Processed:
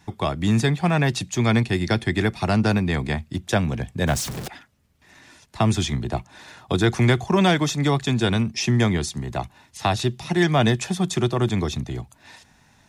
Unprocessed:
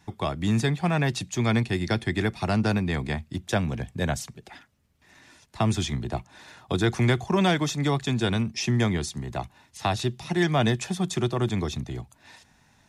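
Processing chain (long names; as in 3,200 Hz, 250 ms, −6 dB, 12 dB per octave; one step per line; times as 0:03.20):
0:04.07–0:04.48: converter with a step at zero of −31 dBFS
level +4 dB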